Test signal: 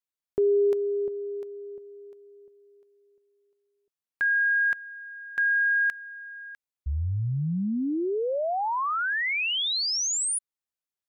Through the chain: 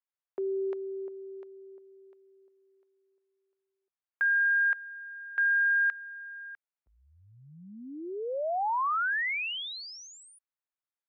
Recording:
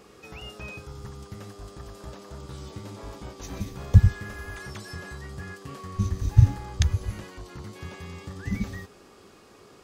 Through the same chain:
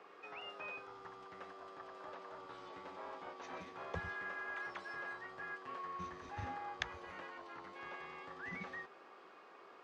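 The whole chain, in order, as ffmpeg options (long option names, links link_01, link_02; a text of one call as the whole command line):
ffmpeg -i in.wav -af "highpass=680,lowpass=2000,afreqshift=-18" out.wav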